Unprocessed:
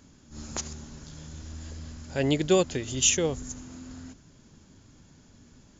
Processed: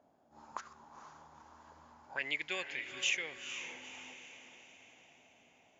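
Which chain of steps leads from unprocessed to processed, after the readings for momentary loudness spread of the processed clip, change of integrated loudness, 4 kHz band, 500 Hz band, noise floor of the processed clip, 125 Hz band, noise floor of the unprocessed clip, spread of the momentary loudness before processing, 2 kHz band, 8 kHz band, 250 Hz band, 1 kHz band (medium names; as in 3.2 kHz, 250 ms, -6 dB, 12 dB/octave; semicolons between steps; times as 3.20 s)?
24 LU, -12.0 dB, -7.0 dB, -21.5 dB, -68 dBFS, -30.5 dB, -57 dBFS, 21 LU, +1.0 dB, no reading, -25.0 dB, -8.0 dB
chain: auto-wah 670–2200 Hz, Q 6.4, up, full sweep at -25 dBFS; echo that smears into a reverb 468 ms, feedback 50%, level -9 dB; trim +6.5 dB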